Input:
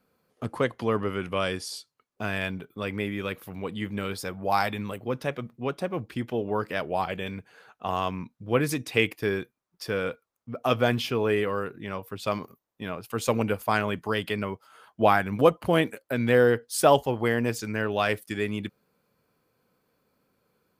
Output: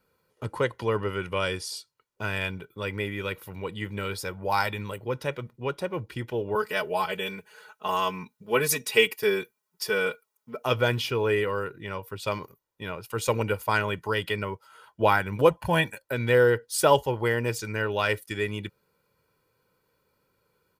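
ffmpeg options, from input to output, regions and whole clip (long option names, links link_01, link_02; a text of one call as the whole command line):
ffmpeg -i in.wav -filter_complex "[0:a]asettb=1/sr,asplit=3[link_01][link_02][link_03];[link_01]atrim=end=6.554[link_04];[link_02]atrim=start=6.55:end=10.64,asetpts=PTS-STARTPTS,afade=type=in:duration=0.004:curve=qsin,afade=type=out:start_time=4.086:duration=0.004:curve=qsin,highpass=frequency=220:poles=1,highshelf=frequency=7500:gain=9,aecho=1:1:4.7:0.87,atrim=end_sample=180369[link_05];[link_03]atrim=start=10.636[link_06];[link_04][link_05]acrossfade=duration=0.004:curve1=hsin:curve2=qsin[link_07];[link_07][link_06]acrossfade=duration=0.004:curve1=qsin:curve2=hsin,asettb=1/sr,asplit=3[link_08][link_09][link_10];[link_08]atrim=end=15.504[link_11];[link_09]atrim=start=15.5:end=16.05,asetpts=PTS-STARTPTS,afade=type=in:duration=0.004:curve=qsin,afade=type=out:start_time=0.546:duration=0.004:curve=qsin,bandreject=frequency=290:width=5.4,aecho=1:1:1.2:0.65,atrim=end_sample=24255[link_12];[link_10]atrim=start=16.046[link_13];[link_11][link_12]acrossfade=duration=0.004:curve1=hsin:curve2=qsin[link_14];[link_14][link_13]acrossfade=duration=0.004:curve1=qsin:curve2=hsin,equalizer=frequency=490:width=1.5:gain=-3.5,aecho=1:1:2.1:0.56" out.wav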